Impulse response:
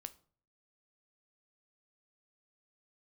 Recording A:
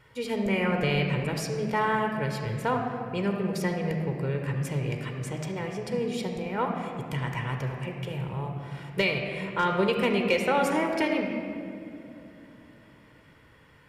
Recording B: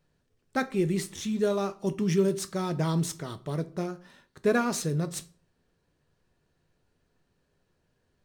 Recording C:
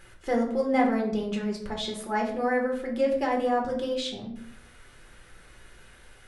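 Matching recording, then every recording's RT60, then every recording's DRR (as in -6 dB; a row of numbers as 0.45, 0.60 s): B; 2.9, 0.50, 0.65 s; 2.5, 10.5, -1.0 dB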